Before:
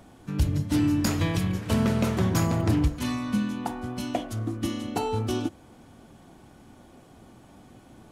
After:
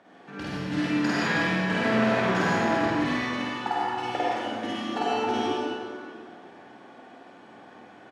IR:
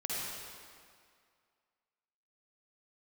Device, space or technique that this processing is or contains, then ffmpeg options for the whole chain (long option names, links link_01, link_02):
station announcement: -filter_complex "[0:a]asettb=1/sr,asplit=3[link_01][link_02][link_03];[link_01]atrim=end=3.194[link_04];[link_02]atrim=start=3.19:end=4.24,asetpts=PTS-STARTPTS,afade=type=in:duration=0.004:curve=qsin,afade=type=out:start_time=1.046:duration=0.004:curve=qsin,aecho=1:1:2.3:0.77,atrim=end_sample=46305[link_05];[link_03]atrim=start=4.236[link_06];[link_04][link_05]acrossfade=duration=0.004:curve1=hsin:curve2=qsin[link_07];[link_07][link_06]acrossfade=duration=0.004:curve1=qsin:curve2=hsin,highpass=350,lowpass=3500,equalizer=frequency=1700:width_type=o:width=0.31:gain=7.5,aecho=1:1:49.56|148.7:0.891|0.316[link_08];[1:a]atrim=start_sample=2205[link_09];[link_08][link_09]afir=irnorm=-1:irlink=0"